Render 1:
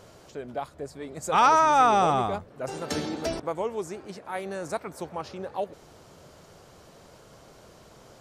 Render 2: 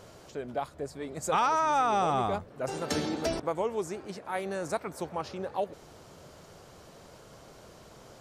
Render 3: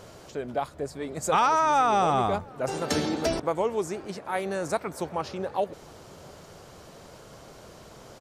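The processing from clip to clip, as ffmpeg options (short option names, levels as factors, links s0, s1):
-af "acompressor=threshold=0.0708:ratio=6"
-filter_complex "[0:a]asplit=2[s0][s1];[s1]adelay=699.7,volume=0.0447,highshelf=f=4000:g=-15.7[s2];[s0][s2]amix=inputs=2:normalize=0,volume=1.58"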